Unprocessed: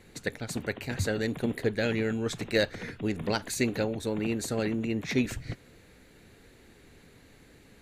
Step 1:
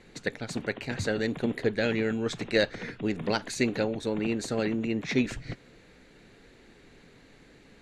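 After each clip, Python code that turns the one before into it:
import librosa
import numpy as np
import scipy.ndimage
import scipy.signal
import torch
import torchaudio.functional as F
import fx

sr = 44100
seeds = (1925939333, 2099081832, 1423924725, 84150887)

y = scipy.signal.sosfilt(scipy.signal.butter(2, 6400.0, 'lowpass', fs=sr, output='sos'), x)
y = fx.peak_eq(y, sr, hz=80.0, db=-9.5, octaves=0.76)
y = F.gain(torch.from_numpy(y), 1.5).numpy()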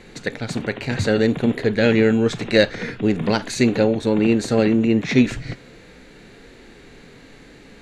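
y = fx.hpss(x, sr, part='harmonic', gain_db=8)
y = F.gain(torch.from_numpy(y), 5.0).numpy()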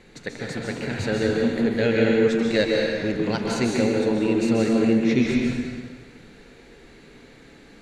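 y = fx.rev_plate(x, sr, seeds[0], rt60_s=1.5, hf_ratio=0.85, predelay_ms=120, drr_db=-1.5)
y = F.gain(torch.from_numpy(y), -7.0).numpy()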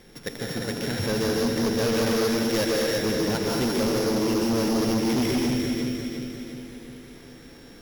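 y = np.r_[np.sort(x[:len(x) // 8 * 8].reshape(-1, 8), axis=1).ravel(), x[len(x) // 8 * 8:]]
y = fx.echo_feedback(y, sr, ms=351, feedback_pct=55, wet_db=-7.0)
y = np.clip(y, -10.0 ** (-20.5 / 20.0), 10.0 ** (-20.5 / 20.0))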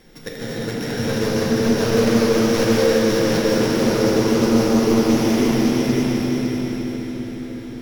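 y = fx.echo_feedback(x, sr, ms=554, feedback_pct=36, wet_db=-3.5)
y = fx.room_shoebox(y, sr, seeds[1], volume_m3=210.0, walls='hard', distance_m=0.58)
y = fx.doppler_dist(y, sr, depth_ms=0.13)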